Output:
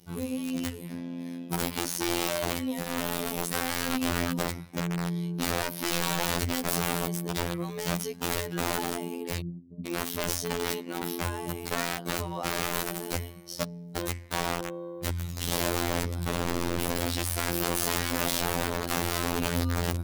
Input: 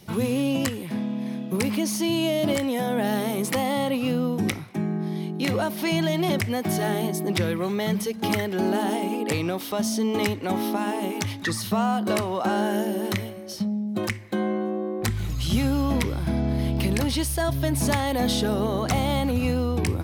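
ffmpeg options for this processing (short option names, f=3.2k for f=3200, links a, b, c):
-filter_complex "[0:a]bass=f=250:g=4,treble=f=4k:g=8,asettb=1/sr,asplit=3[a][b][c];[a]atrim=end=9.404[d];[b]atrim=start=9.4:end=11.69,asetpts=PTS-STARTPTS,afade=t=in:d=0.004:c=qsin,afade=t=out:st=2.286:d=0.004:c=qsin,acrossover=split=260[e][f];[f]adelay=460[g];[e][g]amix=inputs=2:normalize=0,atrim=end_sample=100989[h];[c]atrim=start=11.686[i];[d][h]acrossfade=d=0.004:c1=hsin:c2=qsin[j];[j][i]acrossfade=d=0.004:c1=qsin:c2=hsin,dynaudnorm=f=170:g=5:m=7dB,equalizer=f=8.2k:t=o:w=2.5:g=-4,aeval=exprs='(mod(4.22*val(0)+1,2)-1)/4.22':c=same,afftfilt=real='hypot(re,im)*cos(PI*b)':imag='0':win_size=2048:overlap=0.75,volume=-7.5dB"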